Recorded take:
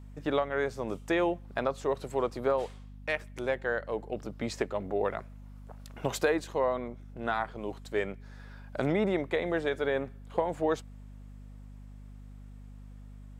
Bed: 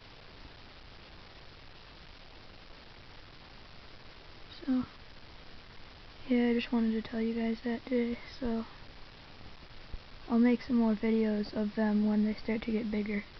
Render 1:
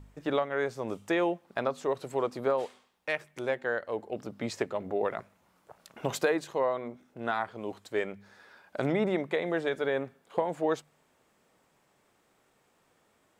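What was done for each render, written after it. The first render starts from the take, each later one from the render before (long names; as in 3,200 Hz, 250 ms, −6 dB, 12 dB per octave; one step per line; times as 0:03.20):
hum removal 50 Hz, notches 5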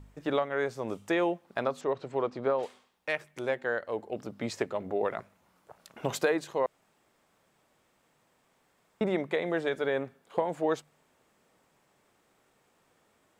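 0:01.81–0:02.63: high-frequency loss of the air 130 metres
0:06.66–0:09.01: fill with room tone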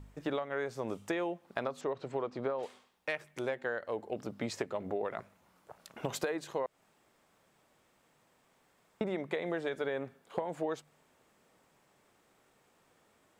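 downward compressor, threshold −31 dBFS, peak gain reduction 9.5 dB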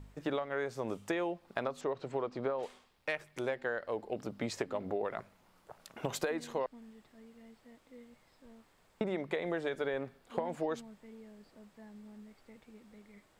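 mix in bed −23.5 dB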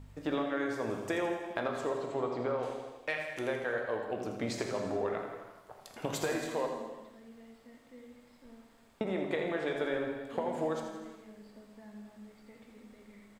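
repeating echo 82 ms, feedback 53%, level −9 dB
reverb whose tail is shaped and stops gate 450 ms falling, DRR 2.5 dB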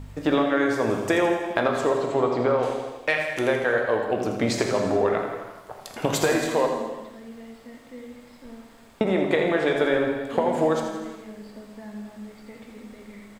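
level +11.5 dB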